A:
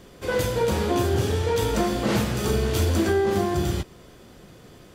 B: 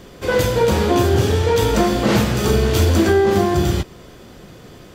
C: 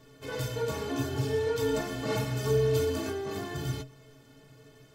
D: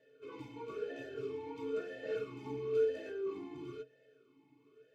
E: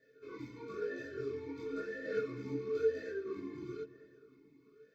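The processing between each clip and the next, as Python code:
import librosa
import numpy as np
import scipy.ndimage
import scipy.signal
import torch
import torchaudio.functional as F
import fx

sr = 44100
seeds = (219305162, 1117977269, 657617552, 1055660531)

y1 = fx.peak_eq(x, sr, hz=10000.0, db=-4.5, octaves=0.53)
y1 = F.gain(torch.from_numpy(y1), 7.0).numpy()
y2 = fx.stiff_resonator(y1, sr, f0_hz=130.0, decay_s=0.24, stiffness=0.03)
y2 = F.gain(torch.from_numpy(y2), -4.0).numpy()
y3 = fx.vowel_sweep(y2, sr, vowels='e-u', hz=1.0)
y3 = F.gain(torch.from_numpy(y3), 1.5).numpy()
y4 = fx.fixed_phaser(y3, sr, hz=2900.0, stages=6)
y4 = fx.chorus_voices(y4, sr, voices=6, hz=0.96, base_ms=22, depth_ms=3.0, mix_pct=50)
y4 = fx.echo_filtered(y4, sr, ms=216, feedback_pct=54, hz=1800.0, wet_db=-16.0)
y4 = F.gain(torch.from_numpy(y4), 7.5).numpy()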